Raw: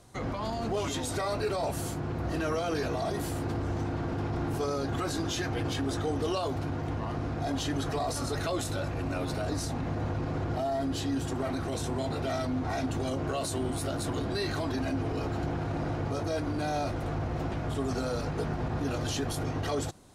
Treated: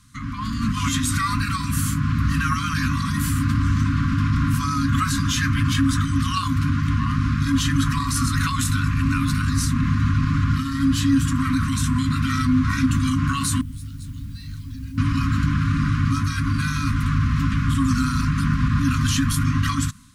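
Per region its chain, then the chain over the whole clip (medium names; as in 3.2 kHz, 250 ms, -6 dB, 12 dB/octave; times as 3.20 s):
13.61–14.98 s: amplifier tone stack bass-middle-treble 10-0-1 + word length cut 12-bit, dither triangular
whole clip: FFT band-reject 280–1000 Hz; dynamic bell 4.3 kHz, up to -5 dB, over -51 dBFS, Q 0.98; level rider gain up to 9.5 dB; trim +4 dB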